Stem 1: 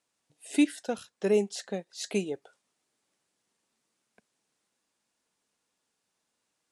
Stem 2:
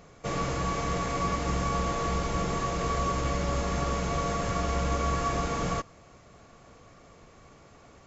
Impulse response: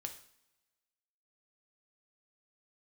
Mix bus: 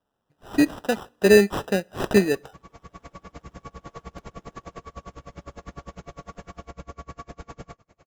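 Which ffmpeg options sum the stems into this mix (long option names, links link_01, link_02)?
-filter_complex "[0:a]acrusher=samples=20:mix=1:aa=0.000001,volume=0.5dB,asplit=3[link_01][link_02][link_03];[link_02]volume=-17.5dB[link_04];[1:a]alimiter=level_in=3.5dB:limit=-24dB:level=0:latency=1:release=227,volume=-3.5dB,aeval=exprs='val(0)*pow(10,-34*(0.5-0.5*cos(2*PI*9.9*n/s))/20)':channel_layout=same,adelay=1950,volume=-9.5dB[link_05];[link_03]apad=whole_len=441661[link_06];[link_05][link_06]sidechaincompress=threshold=-35dB:ratio=4:attack=16:release=1340[link_07];[2:a]atrim=start_sample=2205[link_08];[link_04][link_08]afir=irnorm=-1:irlink=0[link_09];[link_01][link_07][link_09]amix=inputs=3:normalize=0,highshelf=frequency=4600:gain=-6,dynaudnorm=framelen=230:gausssize=7:maxgain=11dB"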